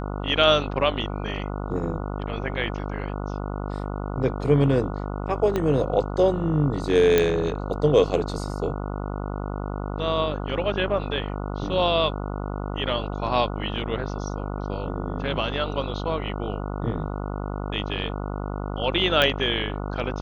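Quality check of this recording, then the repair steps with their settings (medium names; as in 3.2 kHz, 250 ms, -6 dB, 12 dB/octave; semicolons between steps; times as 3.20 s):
buzz 50 Hz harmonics 29 -30 dBFS
5.56 s: pop -12 dBFS
7.18 s: pop -6 dBFS
19.22 s: pop -7 dBFS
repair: de-click; de-hum 50 Hz, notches 29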